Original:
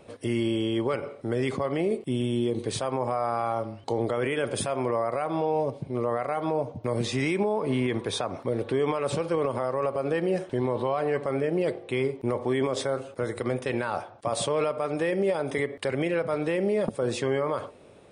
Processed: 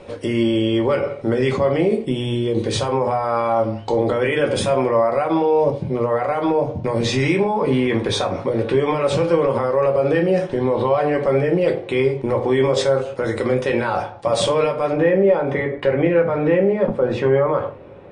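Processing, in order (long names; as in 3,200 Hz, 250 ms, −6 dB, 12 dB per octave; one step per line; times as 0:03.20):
low-pass filter 6,200 Hz 12 dB per octave, from 0:14.93 2,000 Hz
brickwall limiter −20.5 dBFS, peak gain reduction 3.5 dB
convolution reverb RT60 0.25 s, pre-delay 4 ms, DRR 2.5 dB
level +9 dB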